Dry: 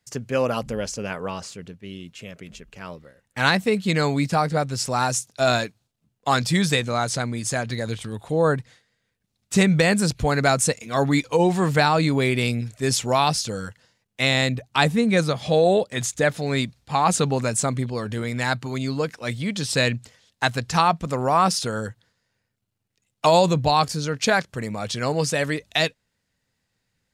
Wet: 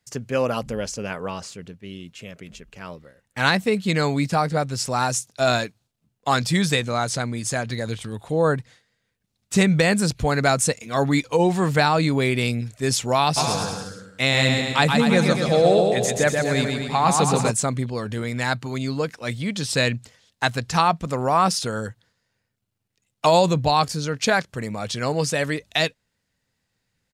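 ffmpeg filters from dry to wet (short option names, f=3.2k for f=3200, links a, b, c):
-filter_complex "[0:a]asplit=3[a][b][c];[a]afade=t=out:st=13.36:d=0.02[d];[b]aecho=1:1:130|240.5|334.4|414.3|482.1|539.8|588.8:0.631|0.398|0.251|0.158|0.1|0.0631|0.0398,afade=t=in:st=13.36:d=0.02,afade=t=out:st=17.5:d=0.02[e];[c]afade=t=in:st=17.5:d=0.02[f];[d][e][f]amix=inputs=3:normalize=0"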